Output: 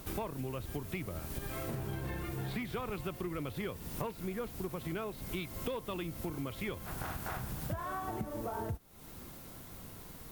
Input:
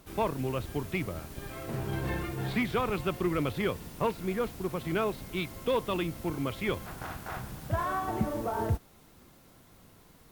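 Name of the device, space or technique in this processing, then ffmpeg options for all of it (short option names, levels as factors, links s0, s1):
ASMR close-microphone chain: -af "lowshelf=f=140:g=3.5,acompressor=threshold=0.00794:ratio=6,highshelf=f=10000:g=7.5,volume=1.88"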